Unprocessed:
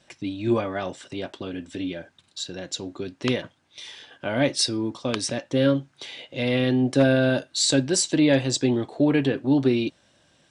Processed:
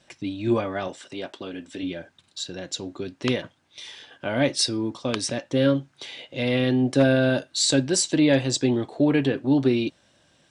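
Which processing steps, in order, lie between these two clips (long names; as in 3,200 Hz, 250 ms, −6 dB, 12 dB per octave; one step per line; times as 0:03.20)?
0:00.88–0:01.83: high-pass filter 250 Hz 6 dB per octave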